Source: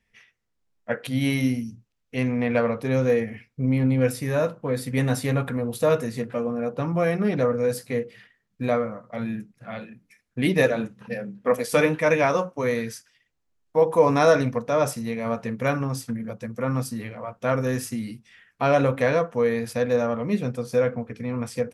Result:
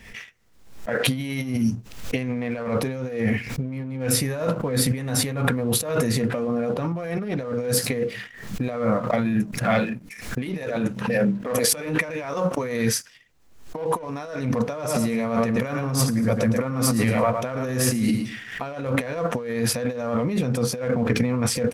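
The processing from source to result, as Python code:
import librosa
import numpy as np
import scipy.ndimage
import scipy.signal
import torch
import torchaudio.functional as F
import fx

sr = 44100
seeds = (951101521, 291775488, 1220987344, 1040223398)

y = fx.echo_feedback(x, sr, ms=110, feedback_pct=25, wet_db=-9, at=(14.74, 18.63))
y = fx.over_compress(y, sr, threshold_db=-33.0, ratio=-1.0)
y = fx.leveller(y, sr, passes=1)
y = fx.pre_swell(y, sr, db_per_s=80.0)
y = y * 10.0 ** (3.5 / 20.0)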